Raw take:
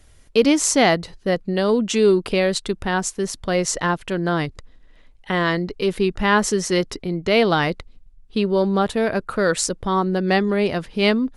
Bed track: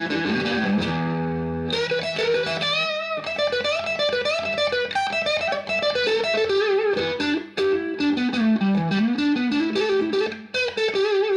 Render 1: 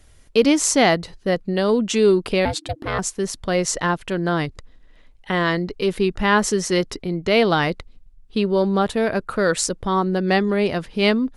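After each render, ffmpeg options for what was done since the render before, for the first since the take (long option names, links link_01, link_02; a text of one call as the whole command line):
ffmpeg -i in.wav -filter_complex "[0:a]asettb=1/sr,asplit=3[link_01][link_02][link_03];[link_01]atrim=end=2.454[link_04];[link_02]atrim=start=2.45:end=2.99,asetpts=PTS-STARTPTS,afade=type=in:duration=0.004:curve=qsin,afade=type=out:start_time=0.536:duration=0.004:curve=qsin,aeval=exprs='val(0)*sin(2*PI*310*n/s)':channel_layout=same[link_05];[link_03]atrim=start=2.986[link_06];[link_04][link_05]acrossfade=duration=0.004:curve1=hsin:curve2=qsin[link_07];[link_07][link_06]acrossfade=duration=0.004:curve1=qsin:curve2=hsin" out.wav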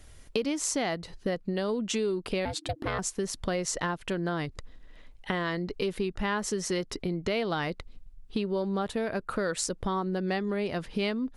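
ffmpeg -i in.wav -af "acompressor=threshold=-28dB:ratio=5" out.wav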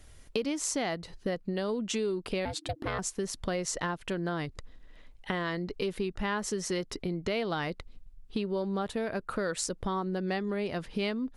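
ffmpeg -i in.wav -af "volume=-2dB" out.wav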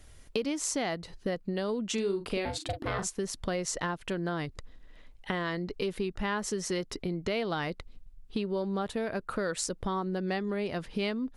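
ffmpeg -i in.wav -filter_complex "[0:a]asettb=1/sr,asplit=3[link_01][link_02][link_03];[link_01]atrim=end=1.944[link_04];[link_02]atrim=start=1.94:end=3.09,asetpts=PTS-STARTPTS,afade=type=in:duration=0.004:curve=qsin,afade=type=out:start_time=1.146:duration=0.004:curve=qsin,asplit=2[link_05][link_06];[link_06]adelay=40,volume=-7.5dB[link_07];[link_05][link_07]amix=inputs=2:normalize=0,atrim=end_sample=50715[link_08];[link_03]atrim=start=3.086[link_09];[link_04][link_08]acrossfade=duration=0.004:curve1=hsin:curve2=qsin[link_10];[link_10][link_09]acrossfade=duration=0.004:curve1=qsin:curve2=hsin" out.wav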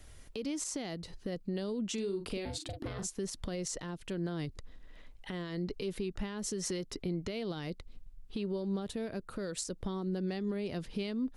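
ffmpeg -i in.wav -filter_complex "[0:a]alimiter=level_in=2dB:limit=-24dB:level=0:latency=1:release=100,volume=-2dB,acrossover=split=470|3000[link_01][link_02][link_03];[link_02]acompressor=threshold=-49dB:ratio=4[link_04];[link_01][link_04][link_03]amix=inputs=3:normalize=0" out.wav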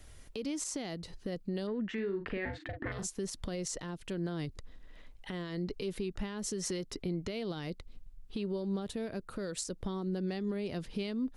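ffmpeg -i in.wav -filter_complex "[0:a]asettb=1/sr,asplit=3[link_01][link_02][link_03];[link_01]atrim=end=1.674[link_04];[link_02]atrim=start=1.67:end=2.92,asetpts=PTS-STARTPTS,afade=type=in:duration=0.004:curve=qsin,afade=type=out:start_time=1.246:duration=0.004:curve=qsin,lowpass=frequency=1800:width_type=q:width=8[link_05];[link_03]atrim=start=2.916[link_06];[link_04][link_05]acrossfade=duration=0.004:curve1=hsin:curve2=qsin[link_07];[link_07][link_06]acrossfade=duration=0.004:curve1=qsin:curve2=hsin" out.wav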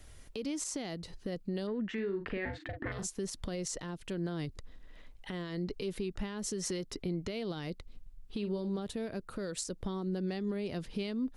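ffmpeg -i in.wav -filter_complex "[0:a]asettb=1/sr,asplit=3[link_01][link_02][link_03];[link_01]atrim=end=8.384[link_04];[link_02]atrim=start=8.38:end=8.78,asetpts=PTS-STARTPTS,afade=type=in:duration=0.004:curve=qsin,afade=type=out:start_time=0.396:duration=0.004:curve=qsin,asplit=2[link_05][link_06];[link_06]adelay=48,volume=-11dB[link_07];[link_05][link_07]amix=inputs=2:normalize=0,atrim=end_sample=17640[link_08];[link_03]atrim=start=8.776[link_09];[link_04][link_08]acrossfade=duration=0.004:curve1=hsin:curve2=qsin[link_10];[link_10][link_09]acrossfade=duration=0.004:curve1=qsin:curve2=hsin" out.wav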